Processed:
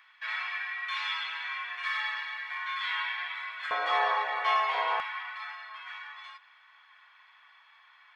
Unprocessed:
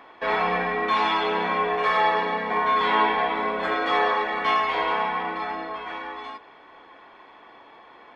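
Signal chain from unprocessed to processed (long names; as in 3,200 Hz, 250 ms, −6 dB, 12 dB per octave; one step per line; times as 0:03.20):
high-pass filter 1,500 Hz 24 dB per octave, from 0:03.71 590 Hz, from 0:05.00 1,300 Hz
level −4 dB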